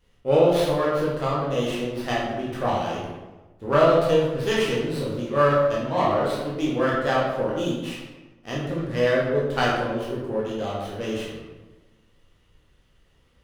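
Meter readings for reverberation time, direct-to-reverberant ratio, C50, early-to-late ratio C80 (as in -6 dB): 1.2 s, -6.0 dB, 0.5 dB, 3.5 dB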